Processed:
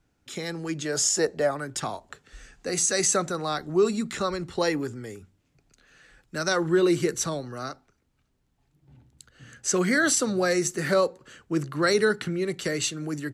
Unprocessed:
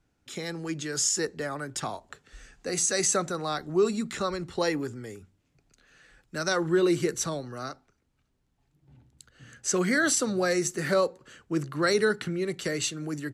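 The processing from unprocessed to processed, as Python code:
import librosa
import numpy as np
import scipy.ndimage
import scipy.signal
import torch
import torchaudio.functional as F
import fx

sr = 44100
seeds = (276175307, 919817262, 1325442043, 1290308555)

y = fx.peak_eq(x, sr, hz=640.0, db=13.5, octaves=0.65, at=(0.85, 1.51))
y = F.gain(torch.from_numpy(y), 2.0).numpy()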